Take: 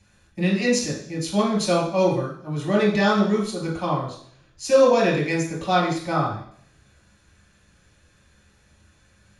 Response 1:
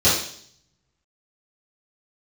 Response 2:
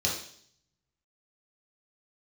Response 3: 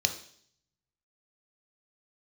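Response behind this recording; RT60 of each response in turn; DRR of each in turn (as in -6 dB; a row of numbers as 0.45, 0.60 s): 2; 0.60, 0.60, 0.60 s; -13.0, -4.0, 6.0 dB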